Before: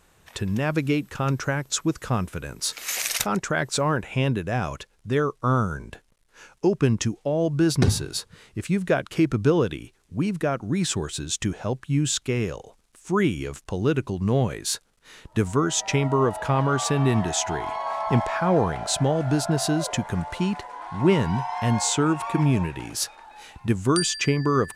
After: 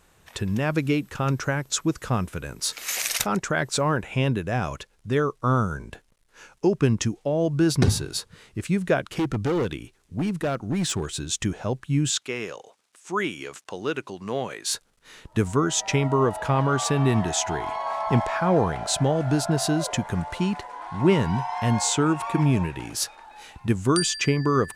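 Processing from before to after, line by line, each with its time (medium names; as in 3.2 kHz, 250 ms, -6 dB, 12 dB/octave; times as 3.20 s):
9.06–11.23 s: hard clipper -20.5 dBFS
12.10–14.71 s: frequency weighting A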